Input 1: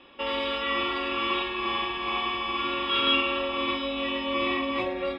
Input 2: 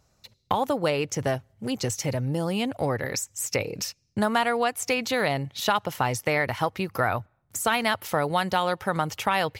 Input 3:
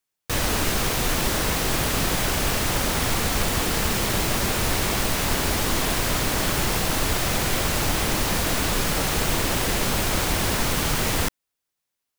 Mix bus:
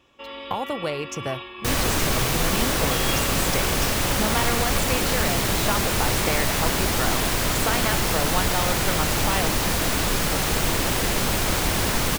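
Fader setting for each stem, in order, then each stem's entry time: −8.0, −3.5, +0.5 decibels; 0.00, 0.00, 1.35 seconds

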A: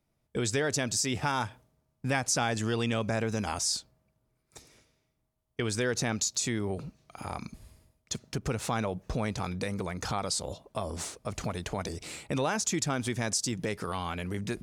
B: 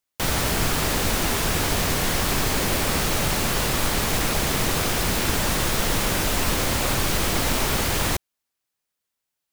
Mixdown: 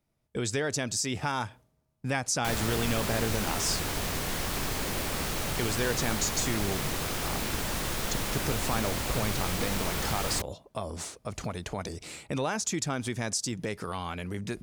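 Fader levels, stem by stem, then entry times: −1.0, −9.0 decibels; 0.00, 2.25 seconds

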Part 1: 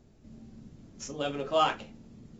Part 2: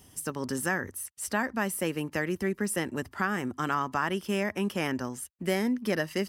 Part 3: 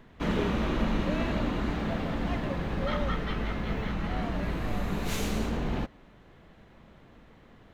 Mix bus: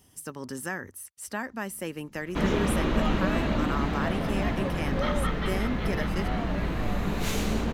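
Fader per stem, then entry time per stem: −9.5, −4.5, +2.5 decibels; 1.45, 0.00, 2.15 seconds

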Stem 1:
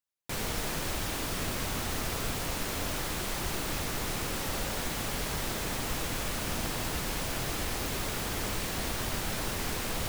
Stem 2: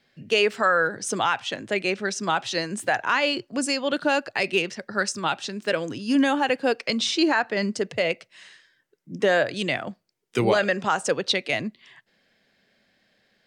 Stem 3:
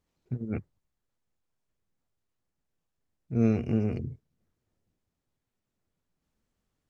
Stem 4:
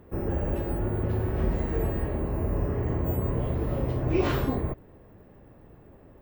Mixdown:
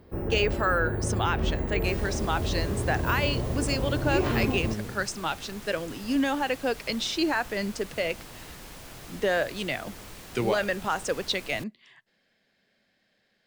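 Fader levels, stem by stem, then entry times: −11.0, −5.0, −7.0, −1.5 decibels; 1.55, 0.00, 0.95, 0.00 seconds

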